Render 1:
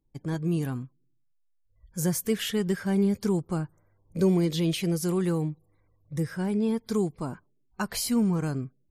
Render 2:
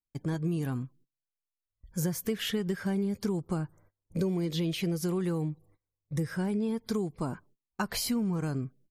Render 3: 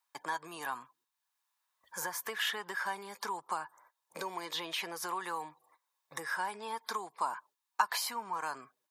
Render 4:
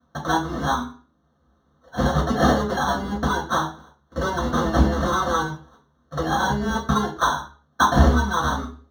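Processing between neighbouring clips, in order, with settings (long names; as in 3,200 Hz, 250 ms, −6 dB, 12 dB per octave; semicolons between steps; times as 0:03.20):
noise gate −58 dBFS, range −26 dB; dynamic equaliser 8,800 Hz, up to −6 dB, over −49 dBFS, Q 1; downward compressor, threshold −29 dBFS, peak gain reduction 10.5 dB; level +2 dB
high-pass with resonance 960 Hz, resonance Q 4.9; hollow resonant body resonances 1,700/3,700 Hz, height 10 dB; multiband upward and downward compressor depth 40%
decimation without filtering 18×; convolution reverb RT60 0.40 s, pre-delay 3 ms, DRR −6.5 dB; level −4 dB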